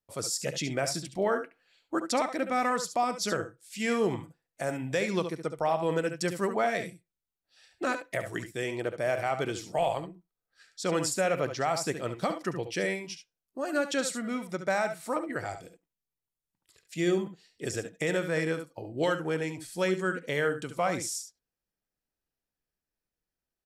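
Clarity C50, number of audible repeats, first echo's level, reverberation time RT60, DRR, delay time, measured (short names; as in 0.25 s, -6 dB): none, 1, -10.5 dB, none, none, 69 ms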